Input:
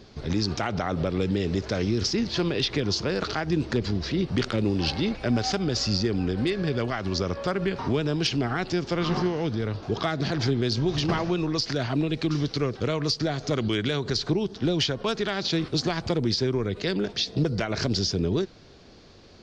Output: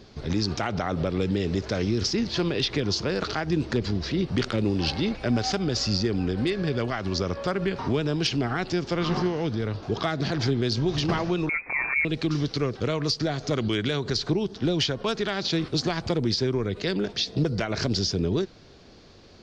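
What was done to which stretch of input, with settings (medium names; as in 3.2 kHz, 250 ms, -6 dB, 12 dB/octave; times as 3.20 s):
11.49–12.05 s: frequency inversion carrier 2.5 kHz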